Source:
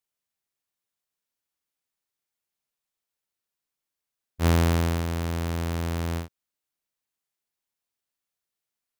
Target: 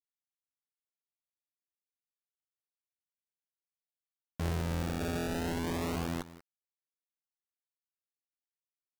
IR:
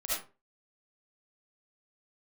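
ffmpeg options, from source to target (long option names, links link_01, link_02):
-filter_complex "[0:a]asettb=1/sr,asplit=3[link_01][link_02][link_03];[link_01]atrim=end=5.004[link_04];[link_02]atrim=start=5:end=5.96,asetpts=PTS-STARTPTS,afade=type=in:duration=0.004:curve=qsin,afade=type=out:start_time=0.956:duration=0.004:curve=qsin,aecho=1:1:7.3:0.95,atrim=end_sample=42336[link_05];[link_03]atrim=start=5.956[link_06];[link_04][link_05]acrossfade=duration=0.004:curve1=hsin:curve2=qsin[link_07];[link_07][link_06]acrossfade=duration=0.004:curve1=qsin:curve2=hsin,asplit=2[link_08][link_09];[1:a]atrim=start_sample=2205[link_10];[link_09][link_10]afir=irnorm=-1:irlink=0,volume=-11dB[link_11];[link_08][link_11]amix=inputs=2:normalize=0,acompressor=threshold=-42dB:ratio=2,acrusher=bits=5:mix=0:aa=0.000001,asplit=2[link_12][link_13];[link_13]adelay=174.9,volume=-16dB,highshelf=frequency=4000:gain=-3.94[link_14];[link_12][link_14]amix=inputs=2:normalize=0,acrusher=samples=24:mix=1:aa=0.000001:lfo=1:lforange=38.4:lforate=0.25"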